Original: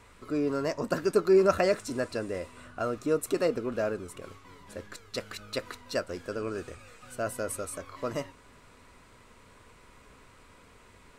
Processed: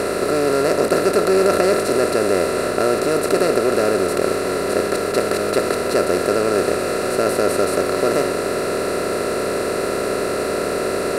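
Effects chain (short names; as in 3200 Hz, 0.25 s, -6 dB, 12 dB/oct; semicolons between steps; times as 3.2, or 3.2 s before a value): per-bin compression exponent 0.2; gain +1.5 dB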